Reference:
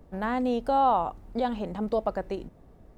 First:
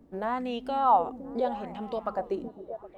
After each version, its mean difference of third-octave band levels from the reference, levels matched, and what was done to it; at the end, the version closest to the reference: 4.0 dB: bass shelf 65 Hz -8.5 dB; on a send: repeats whose band climbs or falls 257 ms, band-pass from 220 Hz, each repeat 0.7 oct, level -8 dB; on the sum: sweeping bell 0.81 Hz 250–3100 Hz +13 dB; trim -6.5 dB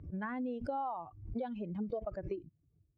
7.0 dB: expander on every frequency bin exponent 2; compression 10:1, threshold -38 dBFS, peak gain reduction 17.5 dB; band-pass 140–2000 Hz; swell ahead of each attack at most 96 dB/s; trim +3.5 dB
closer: first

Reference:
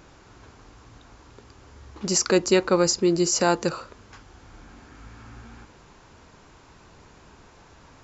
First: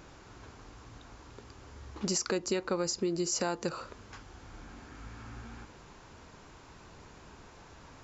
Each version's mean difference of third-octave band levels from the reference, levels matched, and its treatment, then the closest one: 6.5 dB: compression 6:1, threshold -27 dBFS, peak gain reduction 12.5 dB; trim -1.5 dB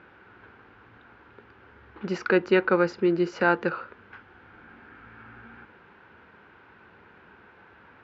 4.0 dB: cabinet simulation 130–2800 Hz, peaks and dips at 140 Hz -9 dB, 280 Hz -5 dB, 640 Hz -6 dB, 1.1 kHz -4 dB, 1.5 kHz +8 dB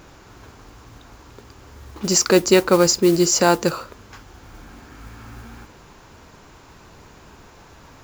2.0 dB: modulation noise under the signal 20 dB; trim +5 dB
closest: third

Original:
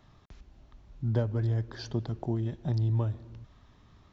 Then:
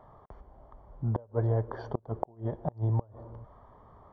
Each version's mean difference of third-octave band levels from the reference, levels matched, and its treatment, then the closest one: 6.0 dB: Savitzky-Golay filter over 41 samples; high-order bell 700 Hz +12.5 dB; inverted gate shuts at -16 dBFS, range -29 dB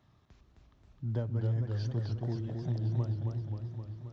4.5 dB: high-pass 69 Hz; bass shelf 170 Hz +5 dB; modulated delay 265 ms, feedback 67%, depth 146 cents, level -4 dB; trim -8 dB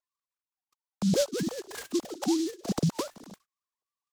12.0 dB: formants replaced by sine waves; gate -56 dBFS, range -31 dB; delay time shaken by noise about 5 kHz, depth 0.1 ms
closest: second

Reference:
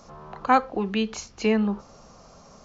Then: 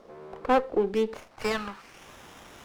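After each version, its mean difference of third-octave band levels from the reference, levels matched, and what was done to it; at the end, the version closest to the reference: 6.0 dB: bit crusher 9-bit; FFT filter 850 Hz 0 dB, 3.5 kHz +15 dB, 6.2 kHz +10 dB; band-pass sweep 420 Hz -> 3.7 kHz, 1.06–2.11 s; sliding maximum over 9 samples; trim +6 dB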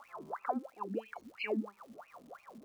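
10.0 dB: wah-wah 3 Hz 230–2600 Hz, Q 17; compression 3:1, threshold -52 dBFS, peak gain reduction 18 dB; loudest bins only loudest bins 64; crackle 380 per s -70 dBFS; trim +15 dB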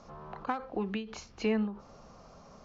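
3.5 dB: in parallel at 0 dB: compression, threshold -30 dBFS, peak gain reduction 15 dB; on the sum: overload inside the chain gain 11 dB; distance through air 110 m; endings held to a fixed fall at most 130 dB/s; trim -9 dB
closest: third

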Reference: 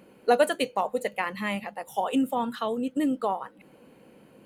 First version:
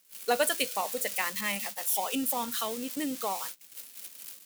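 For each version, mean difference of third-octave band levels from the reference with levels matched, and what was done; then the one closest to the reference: 12.0 dB: zero-crossing glitches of -27 dBFS; gate -36 dBFS, range -25 dB; tilt shelf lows -6 dB, about 1.4 kHz; trim -2.5 dB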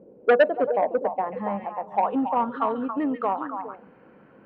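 8.0 dB: repeats whose band climbs or falls 138 ms, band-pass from 2.8 kHz, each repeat -1.4 oct, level -3 dB; low-pass sweep 500 Hz -> 1.5 kHz, 0.14–3.15 s; transformer saturation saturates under 970 Hz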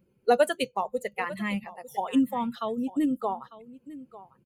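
6.0 dB: expander on every frequency bin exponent 1.5; bass shelf 210 Hz +7 dB; delay 899 ms -17.5 dB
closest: third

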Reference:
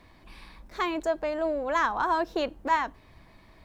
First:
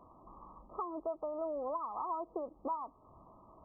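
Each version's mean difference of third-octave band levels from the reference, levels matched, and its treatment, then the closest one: 9.5 dB: tilt EQ +3 dB/octave; compression 5:1, threshold -38 dBFS, peak gain reduction 17 dB; brick-wall FIR low-pass 1.3 kHz; trim +2.5 dB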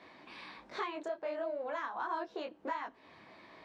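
6.0 dB: compression 6:1, threshold -39 dBFS, peak gain reduction 18 dB; band-pass 270–4600 Hz; detune thickener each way 48 cents; trim +6.5 dB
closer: second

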